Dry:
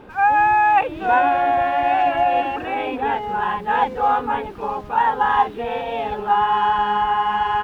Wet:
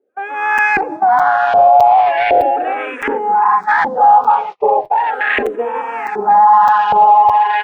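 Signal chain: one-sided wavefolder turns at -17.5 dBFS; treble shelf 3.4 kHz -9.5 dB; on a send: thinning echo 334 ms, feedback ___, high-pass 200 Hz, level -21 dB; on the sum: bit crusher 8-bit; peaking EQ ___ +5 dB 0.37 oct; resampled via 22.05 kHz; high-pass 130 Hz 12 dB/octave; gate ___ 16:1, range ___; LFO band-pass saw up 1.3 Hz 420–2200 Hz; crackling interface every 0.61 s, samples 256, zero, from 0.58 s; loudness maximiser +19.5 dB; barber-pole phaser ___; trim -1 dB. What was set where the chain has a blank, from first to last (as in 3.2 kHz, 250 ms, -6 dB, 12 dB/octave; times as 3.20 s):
38%, 790 Hz, -29 dBFS, -37 dB, -0.38 Hz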